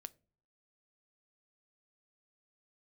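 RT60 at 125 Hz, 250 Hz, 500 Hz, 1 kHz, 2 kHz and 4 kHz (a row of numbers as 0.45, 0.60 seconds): 0.65, 0.60, 0.60, 0.55, 0.30, 0.25 seconds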